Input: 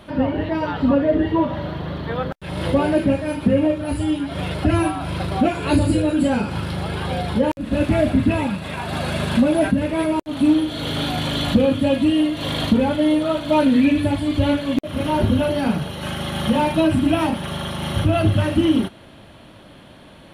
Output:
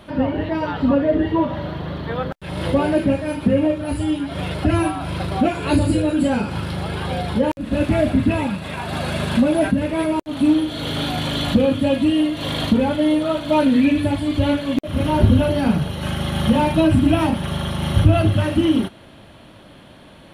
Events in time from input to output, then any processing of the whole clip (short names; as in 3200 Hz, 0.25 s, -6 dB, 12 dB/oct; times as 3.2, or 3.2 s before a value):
14.88–18.22 low shelf 140 Hz +9.5 dB